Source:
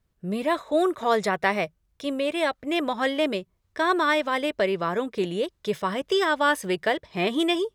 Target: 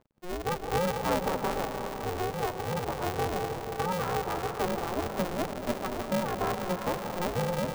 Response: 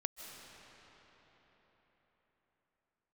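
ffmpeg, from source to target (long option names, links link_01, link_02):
-filter_complex "[0:a]lowpass=frequency=1000:width=0.5412,lowpass=frequency=1000:width=1.3066,acompressor=mode=upward:threshold=-37dB:ratio=2.5,aeval=exprs='sgn(val(0))*max(abs(val(0))-0.00335,0)':channel_layout=same[link_01];[1:a]atrim=start_sample=2205[link_02];[link_01][link_02]afir=irnorm=-1:irlink=0,aeval=exprs='val(0)*sgn(sin(2*PI*180*n/s))':channel_layout=same,volume=-4dB"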